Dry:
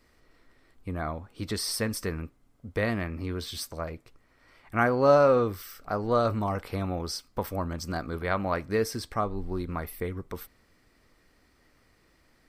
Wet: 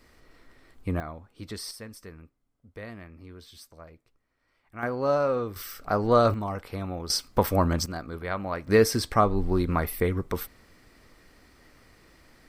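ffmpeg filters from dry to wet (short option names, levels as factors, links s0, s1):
-af "asetnsamples=n=441:p=0,asendcmd='1 volume volume -6dB;1.71 volume volume -13dB;4.83 volume volume -5dB;5.56 volume volume 4.5dB;6.34 volume volume -2.5dB;7.1 volume volume 8.5dB;7.86 volume volume -3dB;8.67 volume volume 7.5dB',volume=1.88"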